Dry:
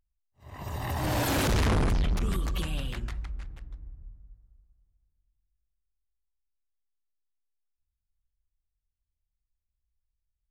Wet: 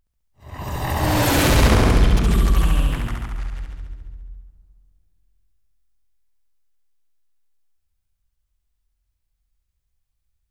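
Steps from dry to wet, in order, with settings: 2.49–3.35 s: graphic EQ 500/1000/4000 Hz -3/+5/-9 dB; flutter echo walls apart 11.8 m, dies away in 1.3 s; trim +7.5 dB

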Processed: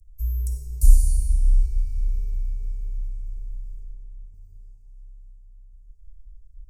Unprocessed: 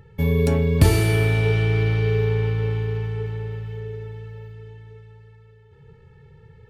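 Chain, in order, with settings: inverse Chebyshev band-stop 120–3700 Hz, stop band 40 dB; bass shelf 230 Hz +12 dB; 3.84–4.34 s: inharmonic resonator 63 Hz, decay 0.24 s, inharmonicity 0.002; frequency shift -22 Hz; reverberation RT60 4.2 s, pre-delay 10 ms, DRR -1 dB

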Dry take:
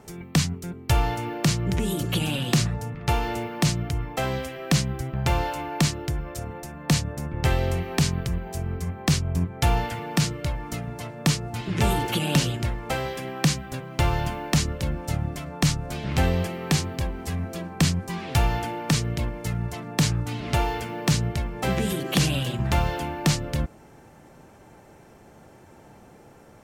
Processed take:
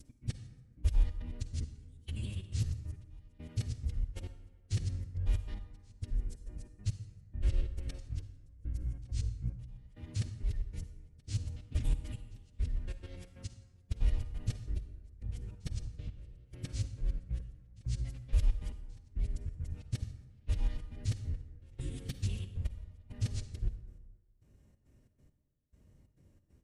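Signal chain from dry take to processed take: time reversed locally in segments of 94 ms; dynamic bell 250 Hz, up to -4 dB, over -35 dBFS, Q 1.3; trance gate "x.x....xxx.x" 137 bpm -24 dB; formant-preserving pitch shift -6.5 st; in parallel at -5.5 dB: sine folder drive 3 dB, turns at -8.5 dBFS; on the sum: amplifier tone stack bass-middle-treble 10-0-1; on a send at -10 dB: reverberation RT60 1.3 s, pre-delay 39 ms; on the sum: trim -3.5 dB

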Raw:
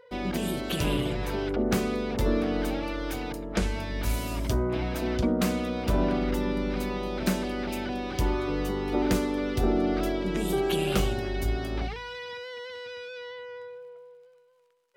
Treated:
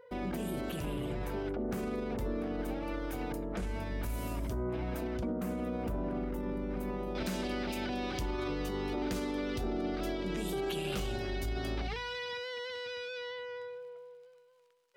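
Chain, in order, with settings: peak limiter -26 dBFS, peak gain reduction 11 dB; peaking EQ 4.3 kHz -8 dB 1.8 oct, from 5.41 s -15 dB, from 7.15 s +3 dB; trim -1.5 dB

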